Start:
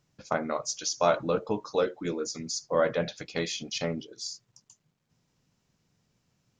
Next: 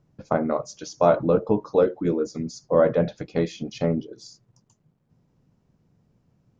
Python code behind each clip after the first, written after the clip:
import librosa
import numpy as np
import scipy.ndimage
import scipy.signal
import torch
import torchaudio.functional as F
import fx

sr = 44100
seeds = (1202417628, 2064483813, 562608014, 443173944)

y = fx.tilt_shelf(x, sr, db=10.0, hz=1400.0)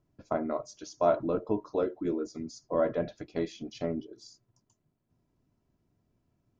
y = x + 0.48 * np.pad(x, (int(3.0 * sr / 1000.0), 0))[:len(x)]
y = y * 10.0 ** (-8.5 / 20.0)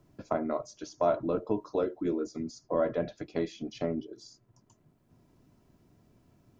y = fx.band_squash(x, sr, depth_pct=40)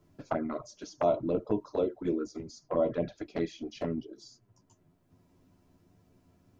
y = fx.env_flanger(x, sr, rest_ms=11.9, full_db=-24.5)
y = y * 10.0 ** (2.0 / 20.0)